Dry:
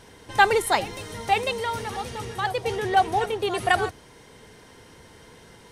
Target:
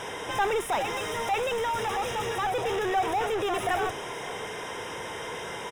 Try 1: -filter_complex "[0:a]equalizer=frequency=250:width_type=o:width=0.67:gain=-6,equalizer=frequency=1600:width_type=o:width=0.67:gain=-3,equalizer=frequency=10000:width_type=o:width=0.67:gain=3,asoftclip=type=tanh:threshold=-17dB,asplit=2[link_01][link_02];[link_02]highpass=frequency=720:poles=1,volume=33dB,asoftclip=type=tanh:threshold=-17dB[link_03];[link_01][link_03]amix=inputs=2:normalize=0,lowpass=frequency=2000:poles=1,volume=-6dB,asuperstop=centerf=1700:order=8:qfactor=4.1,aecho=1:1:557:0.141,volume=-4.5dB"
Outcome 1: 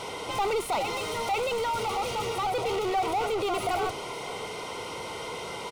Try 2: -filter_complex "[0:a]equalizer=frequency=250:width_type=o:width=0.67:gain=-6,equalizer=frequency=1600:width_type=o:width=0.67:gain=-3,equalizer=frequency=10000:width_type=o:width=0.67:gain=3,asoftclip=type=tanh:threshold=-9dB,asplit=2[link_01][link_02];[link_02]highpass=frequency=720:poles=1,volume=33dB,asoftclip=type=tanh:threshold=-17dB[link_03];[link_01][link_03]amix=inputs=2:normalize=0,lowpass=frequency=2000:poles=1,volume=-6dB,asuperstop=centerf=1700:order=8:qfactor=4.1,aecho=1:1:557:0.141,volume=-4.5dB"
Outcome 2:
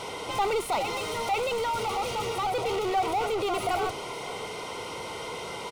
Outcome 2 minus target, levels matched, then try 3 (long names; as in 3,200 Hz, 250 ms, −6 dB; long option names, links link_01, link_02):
2,000 Hz band −3.0 dB
-filter_complex "[0:a]equalizer=frequency=250:width_type=o:width=0.67:gain=-6,equalizer=frequency=1600:width_type=o:width=0.67:gain=-3,equalizer=frequency=10000:width_type=o:width=0.67:gain=3,asoftclip=type=tanh:threshold=-9dB,asplit=2[link_01][link_02];[link_02]highpass=frequency=720:poles=1,volume=33dB,asoftclip=type=tanh:threshold=-17dB[link_03];[link_01][link_03]amix=inputs=2:normalize=0,lowpass=frequency=2000:poles=1,volume=-6dB,asuperstop=centerf=4400:order=8:qfactor=4.1,aecho=1:1:557:0.141,volume=-4.5dB"